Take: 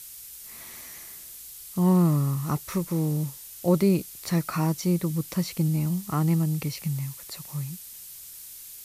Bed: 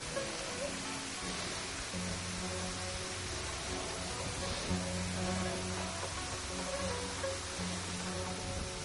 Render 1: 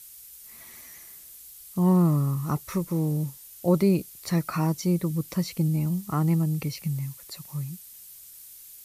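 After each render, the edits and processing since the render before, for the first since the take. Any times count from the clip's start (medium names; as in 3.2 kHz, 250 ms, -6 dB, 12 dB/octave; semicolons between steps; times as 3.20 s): noise reduction 6 dB, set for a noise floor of -44 dBFS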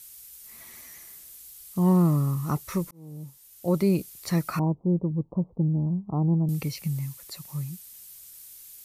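2.91–4.03 s: fade in; 4.59–6.49 s: steep low-pass 950 Hz 48 dB/octave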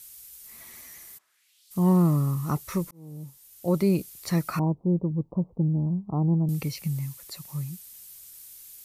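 1.17–1.70 s: band-pass filter 960 Hz -> 4.5 kHz, Q 2.2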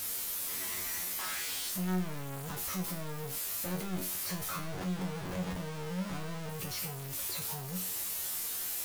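one-bit comparator; feedback comb 92 Hz, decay 0.39 s, harmonics all, mix 90%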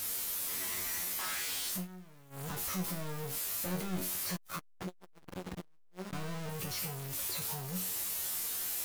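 1.76–2.42 s: dip -18 dB, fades 0.12 s; 4.36–6.13 s: transformer saturation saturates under 300 Hz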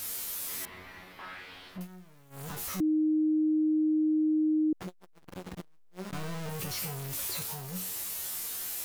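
0.65–1.81 s: distance through air 400 m; 2.80–4.73 s: bleep 310 Hz -23 dBFS; 5.59–7.43 s: waveshaping leveller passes 1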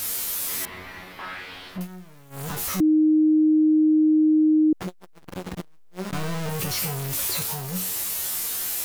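trim +8.5 dB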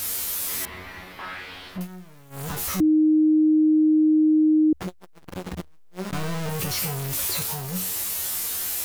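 peaking EQ 72 Hz +10 dB 0.3 oct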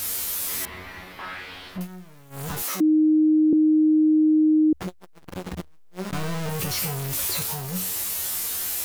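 2.62–3.53 s: steep high-pass 220 Hz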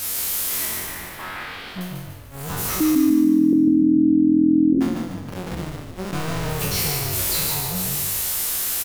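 spectral sustain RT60 0.97 s; frequency-shifting echo 147 ms, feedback 49%, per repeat -42 Hz, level -4 dB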